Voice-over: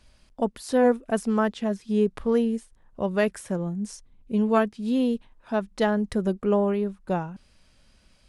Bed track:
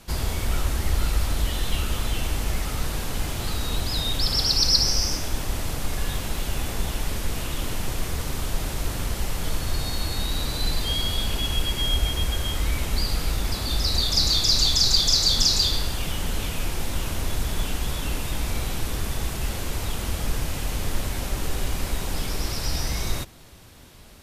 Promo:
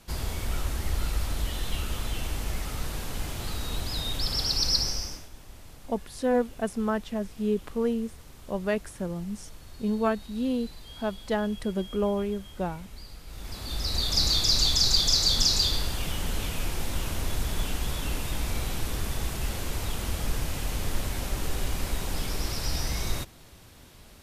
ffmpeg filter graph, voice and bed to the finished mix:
-filter_complex "[0:a]adelay=5500,volume=-4.5dB[a];[1:a]volume=11.5dB,afade=t=out:st=4.76:d=0.53:silence=0.188365,afade=t=in:st=13.26:d=0.95:silence=0.141254[b];[a][b]amix=inputs=2:normalize=0"

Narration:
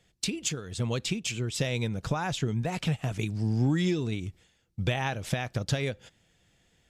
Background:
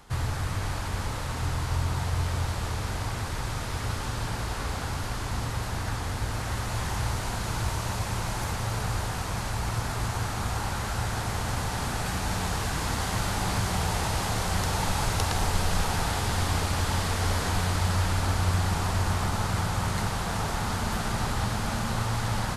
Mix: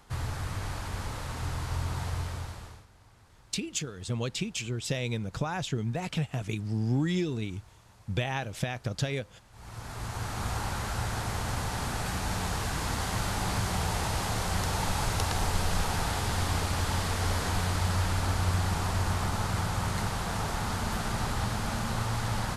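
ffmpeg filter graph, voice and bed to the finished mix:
-filter_complex "[0:a]adelay=3300,volume=-2dB[a];[1:a]volume=20dB,afade=t=out:st=2.09:d=0.77:silence=0.0749894,afade=t=in:st=9.51:d=0.97:silence=0.0595662[b];[a][b]amix=inputs=2:normalize=0"

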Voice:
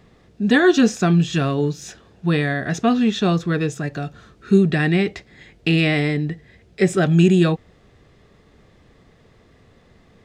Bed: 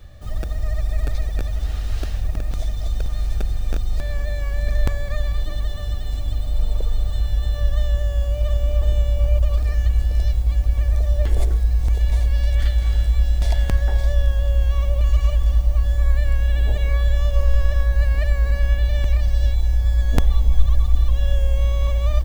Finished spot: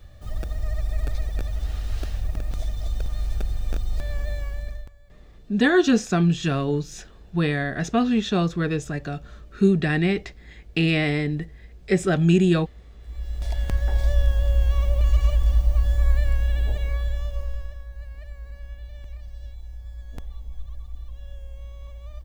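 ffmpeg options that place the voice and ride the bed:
-filter_complex "[0:a]adelay=5100,volume=-3.5dB[a];[1:a]volume=22dB,afade=t=out:st=4.33:d=0.56:silence=0.0630957,afade=t=in:st=13:d=1.11:silence=0.0501187,afade=t=out:st=16.11:d=1.68:silence=0.125893[b];[a][b]amix=inputs=2:normalize=0"

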